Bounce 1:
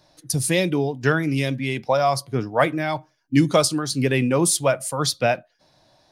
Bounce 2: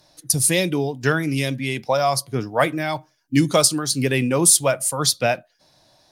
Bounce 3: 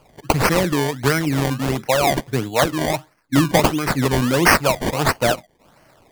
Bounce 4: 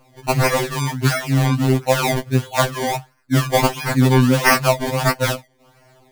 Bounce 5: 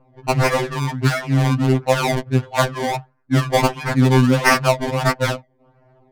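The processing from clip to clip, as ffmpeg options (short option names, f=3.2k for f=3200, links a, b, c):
-af "aemphasis=mode=production:type=cd"
-filter_complex "[0:a]asplit=2[a][b];[b]acompressor=threshold=-24dB:ratio=6,volume=-0.5dB[c];[a][c]amix=inputs=2:normalize=0,acrusher=samples=23:mix=1:aa=0.000001:lfo=1:lforange=23:lforate=1.5,volume=-1dB"
-af "afftfilt=real='re*2.45*eq(mod(b,6),0)':imag='im*2.45*eq(mod(b,6),0)':win_size=2048:overlap=0.75,volume=2dB"
-af "adynamicsmooth=sensitivity=3:basefreq=1.1k"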